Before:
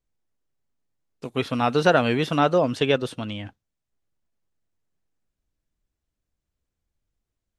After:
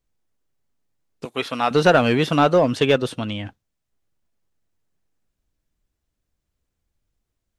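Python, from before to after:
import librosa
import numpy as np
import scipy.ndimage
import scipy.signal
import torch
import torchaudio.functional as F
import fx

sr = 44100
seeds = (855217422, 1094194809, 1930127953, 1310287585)

p1 = fx.highpass(x, sr, hz=600.0, slope=6, at=(1.25, 1.71))
p2 = np.clip(p1, -10.0 ** (-15.5 / 20.0), 10.0 ** (-15.5 / 20.0))
y = p1 + (p2 * 10.0 ** (-4.0 / 20.0))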